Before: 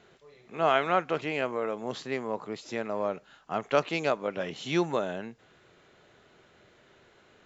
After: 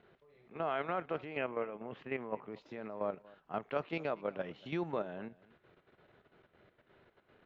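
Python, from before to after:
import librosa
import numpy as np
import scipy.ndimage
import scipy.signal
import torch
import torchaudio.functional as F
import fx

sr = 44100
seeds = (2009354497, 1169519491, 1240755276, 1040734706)

y = fx.high_shelf_res(x, sr, hz=3400.0, db=-7.0, q=3.0, at=(1.37, 2.48))
y = fx.level_steps(y, sr, step_db=10)
y = fx.air_absorb(y, sr, metres=320.0)
y = y + 10.0 ** (-22.5 / 20.0) * np.pad(y, (int(236 * sr / 1000.0), 0))[:len(y)]
y = y * librosa.db_to_amplitude(-3.0)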